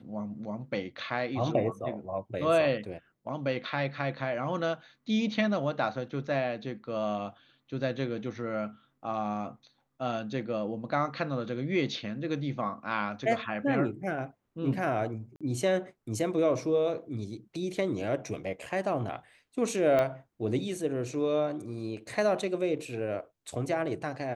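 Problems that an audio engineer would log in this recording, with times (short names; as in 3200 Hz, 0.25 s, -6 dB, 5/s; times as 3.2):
15.36–15.41 gap 46 ms
19.99 pop -16 dBFS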